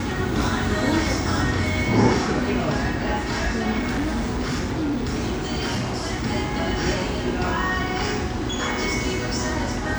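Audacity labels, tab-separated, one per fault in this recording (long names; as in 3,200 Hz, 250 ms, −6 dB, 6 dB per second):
3.780000	5.900000	clipping −20.5 dBFS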